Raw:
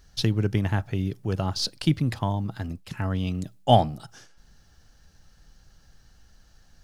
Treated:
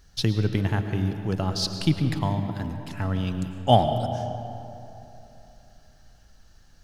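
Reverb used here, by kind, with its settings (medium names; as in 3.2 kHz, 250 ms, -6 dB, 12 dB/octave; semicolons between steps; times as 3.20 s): algorithmic reverb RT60 3 s, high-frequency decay 0.5×, pre-delay 70 ms, DRR 7 dB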